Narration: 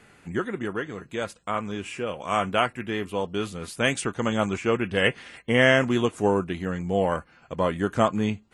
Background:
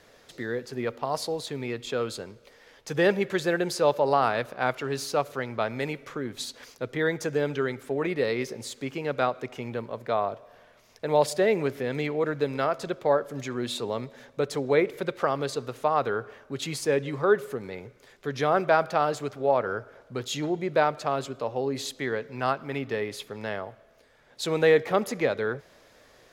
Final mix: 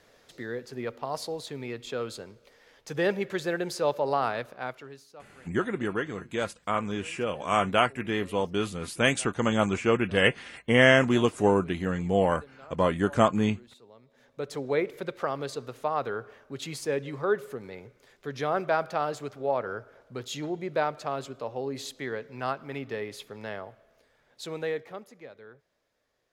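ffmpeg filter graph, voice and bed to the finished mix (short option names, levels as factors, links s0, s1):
-filter_complex "[0:a]adelay=5200,volume=1[s0];[1:a]volume=5.62,afade=t=out:st=4.3:d=0.74:silence=0.105925,afade=t=in:st=14.04:d=0.56:silence=0.112202,afade=t=out:st=23.95:d=1.13:silence=0.149624[s1];[s0][s1]amix=inputs=2:normalize=0"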